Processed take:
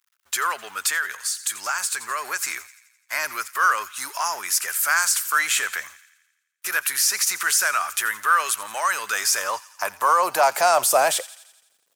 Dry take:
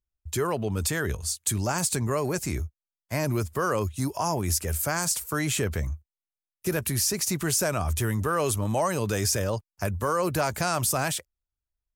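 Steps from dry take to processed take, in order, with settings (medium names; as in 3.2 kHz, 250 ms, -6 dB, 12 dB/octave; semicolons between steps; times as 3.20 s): companding laws mixed up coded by mu; in parallel at -2 dB: peak limiter -20 dBFS, peak gain reduction 8.5 dB; on the sum: feedback echo behind a high-pass 85 ms, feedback 58%, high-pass 1.9 kHz, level -16 dB; high-pass sweep 1.4 kHz -> 470 Hz, 8.94–11.67 s; 0.89–2.39 s: compression 2.5:1, threshold -25 dBFS, peak gain reduction 7 dB; trim +1.5 dB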